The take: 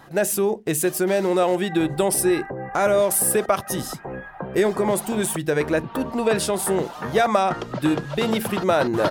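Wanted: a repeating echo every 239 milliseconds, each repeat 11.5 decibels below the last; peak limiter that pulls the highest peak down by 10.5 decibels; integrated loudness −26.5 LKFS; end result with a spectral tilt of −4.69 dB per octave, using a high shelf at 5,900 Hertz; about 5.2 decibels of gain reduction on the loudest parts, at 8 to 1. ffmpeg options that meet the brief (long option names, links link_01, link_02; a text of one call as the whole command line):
ffmpeg -i in.wav -af "highshelf=frequency=5900:gain=-7.5,acompressor=threshold=-20dB:ratio=8,alimiter=limit=-21dB:level=0:latency=1,aecho=1:1:239|478|717:0.266|0.0718|0.0194,volume=3.5dB" out.wav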